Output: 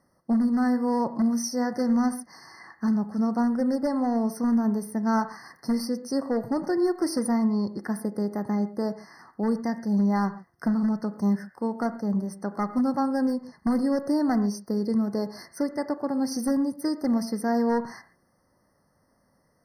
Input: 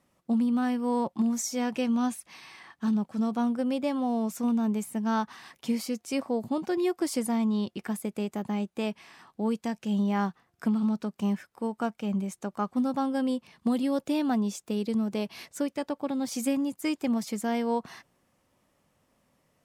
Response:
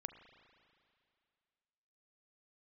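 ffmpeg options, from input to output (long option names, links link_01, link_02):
-filter_complex "[0:a]aeval=exprs='0.0891*(abs(mod(val(0)/0.0891+3,4)-2)-1)':channel_layout=same[link_01];[1:a]atrim=start_sample=2205,atrim=end_sample=6174[link_02];[link_01][link_02]afir=irnorm=-1:irlink=0,afftfilt=real='re*eq(mod(floor(b*sr/1024/2100),2),0)':imag='im*eq(mod(floor(b*sr/1024/2100),2),0)':win_size=1024:overlap=0.75,volume=7.5dB"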